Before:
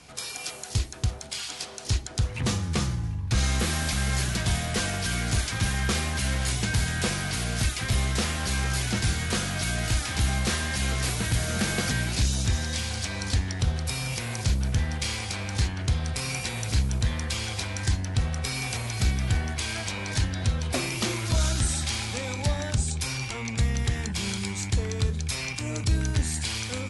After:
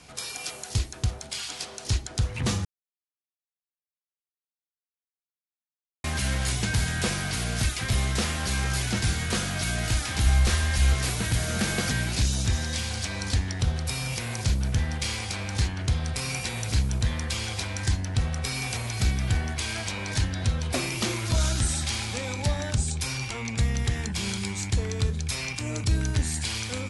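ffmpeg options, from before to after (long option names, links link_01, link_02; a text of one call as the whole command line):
ffmpeg -i in.wav -filter_complex "[0:a]asplit=3[link_01][link_02][link_03];[link_01]afade=type=out:start_time=10.25:duration=0.02[link_04];[link_02]asubboost=boost=5.5:cutoff=70,afade=type=in:start_time=10.25:duration=0.02,afade=type=out:start_time=10.93:duration=0.02[link_05];[link_03]afade=type=in:start_time=10.93:duration=0.02[link_06];[link_04][link_05][link_06]amix=inputs=3:normalize=0,asplit=3[link_07][link_08][link_09];[link_07]atrim=end=2.65,asetpts=PTS-STARTPTS,afade=type=out:start_time=2.646:duration=0.004:curve=hsin[link_10];[link_08]atrim=start=2.65:end=6.04,asetpts=PTS-STARTPTS,volume=0[link_11];[link_09]atrim=start=6.04,asetpts=PTS-STARTPTS,afade=type=in:duration=0.004:curve=hsin[link_12];[link_10][link_11][link_12]concat=n=3:v=0:a=1" out.wav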